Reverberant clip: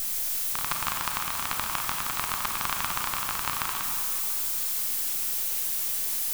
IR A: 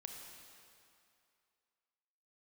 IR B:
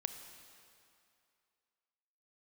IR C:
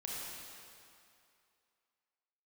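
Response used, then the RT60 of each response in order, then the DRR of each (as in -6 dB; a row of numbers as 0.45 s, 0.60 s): A; 2.5 s, 2.5 s, 2.5 s; 2.0 dB, 7.5 dB, -5.0 dB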